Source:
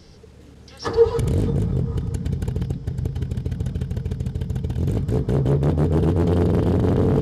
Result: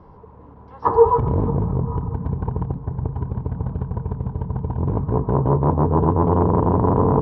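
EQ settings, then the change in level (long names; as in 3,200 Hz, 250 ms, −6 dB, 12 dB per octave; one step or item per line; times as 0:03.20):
low-pass with resonance 990 Hz, resonance Q 8.8
0.0 dB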